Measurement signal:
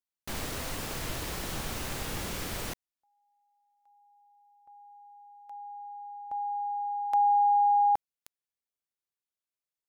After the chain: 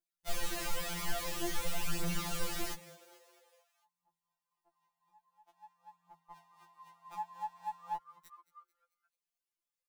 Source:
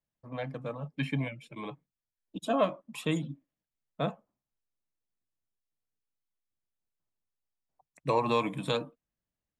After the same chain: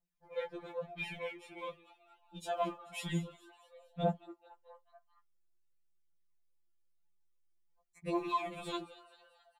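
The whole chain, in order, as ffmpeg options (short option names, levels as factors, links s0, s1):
-filter_complex "[0:a]alimiter=limit=0.0708:level=0:latency=1:release=14,aphaser=in_gain=1:out_gain=1:delay=5:decay=0.72:speed=0.49:type=triangular,asplit=6[s0][s1][s2][s3][s4][s5];[s1]adelay=220,afreqshift=120,volume=0.119[s6];[s2]adelay=440,afreqshift=240,volume=0.0676[s7];[s3]adelay=660,afreqshift=360,volume=0.0385[s8];[s4]adelay=880,afreqshift=480,volume=0.0221[s9];[s5]adelay=1100,afreqshift=600,volume=0.0126[s10];[s0][s6][s7][s8][s9][s10]amix=inputs=6:normalize=0,afftfilt=real='re*2.83*eq(mod(b,8),0)':imag='im*2.83*eq(mod(b,8),0)':win_size=2048:overlap=0.75,volume=0.708"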